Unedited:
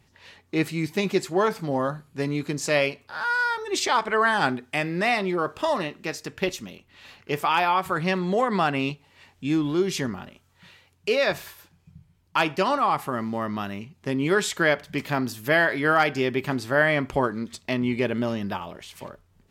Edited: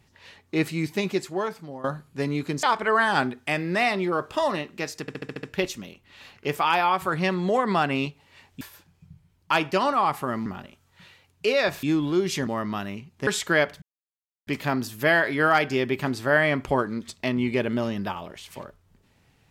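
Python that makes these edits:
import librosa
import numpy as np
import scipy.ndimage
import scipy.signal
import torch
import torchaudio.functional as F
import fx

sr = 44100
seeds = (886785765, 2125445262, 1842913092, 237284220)

y = fx.edit(x, sr, fx.fade_out_to(start_s=0.84, length_s=1.0, floor_db=-16.5),
    fx.cut(start_s=2.63, length_s=1.26),
    fx.stutter(start_s=6.27, slice_s=0.07, count=7),
    fx.swap(start_s=9.45, length_s=0.64, other_s=11.46, other_length_s=1.85),
    fx.cut(start_s=14.11, length_s=0.26),
    fx.insert_silence(at_s=14.92, length_s=0.65), tone=tone)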